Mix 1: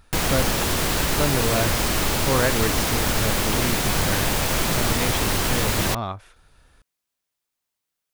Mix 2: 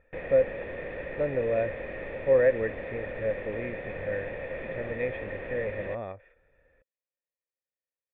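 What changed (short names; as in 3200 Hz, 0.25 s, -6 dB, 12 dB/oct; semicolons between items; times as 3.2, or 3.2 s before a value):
speech +7.0 dB; master: add vocal tract filter e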